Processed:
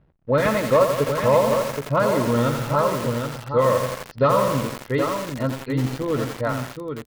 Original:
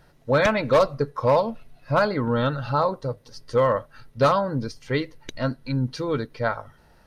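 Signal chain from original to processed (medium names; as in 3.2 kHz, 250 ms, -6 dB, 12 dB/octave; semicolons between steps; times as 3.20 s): comb of notches 780 Hz; hysteresis with a dead band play -49 dBFS; distance through air 280 m; delay 772 ms -6.5 dB; bit-crushed delay 85 ms, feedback 80%, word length 5-bit, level -6 dB; trim +2 dB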